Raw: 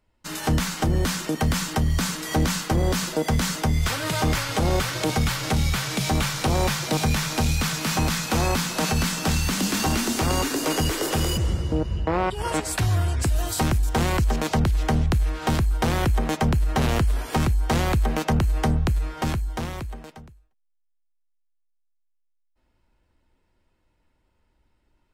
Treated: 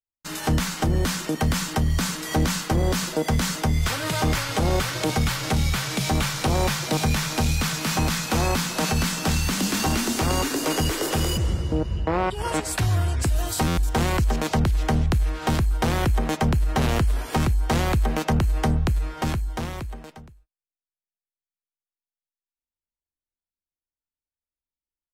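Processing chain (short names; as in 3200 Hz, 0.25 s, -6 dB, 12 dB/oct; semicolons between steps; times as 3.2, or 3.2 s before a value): gate -55 dBFS, range -34 dB; stuck buffer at 13.67, samples 512, times 8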